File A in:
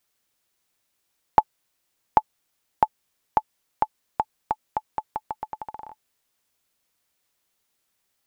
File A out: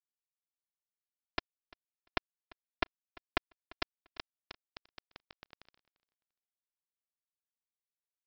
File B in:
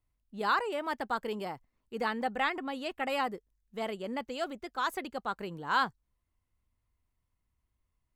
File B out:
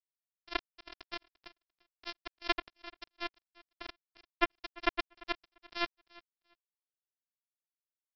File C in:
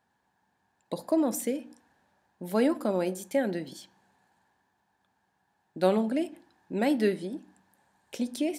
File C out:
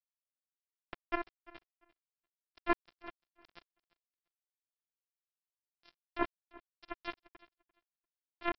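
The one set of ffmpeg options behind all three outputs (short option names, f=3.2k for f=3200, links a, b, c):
-af "aeval=exprs='0.891*(cos(1*acos(clip(val(0)/0.891,-1,1)))-cos(1*PI/2))+0.141*(cos(6*acos(clip(val(0)/0.891,-1,1)))-cos(6*PI/2))+0.355*(cos(7*acos(clip(val(0)/0.891,-1,1)))-cos(7*PI/2))':c=same,areverse,acompressor=threshold=-29dB:ratio=6,areverse,afftfilt=real='hypot(re,im)*cos(PI*b)':imag='0':win_size=512:overlap=0.75,afftfilt=real='re*between(b*sr/4096,120,2700)':imag='im*between(b*sr/4096,120,2700)':win_size=4096:overlap=0.75,aresample=11025,acrusher=bits=3:mix=0:aa=0.5,aresample=44100,aecho=1:1:345|690:0.0794|0.0143,volume=8.5dB"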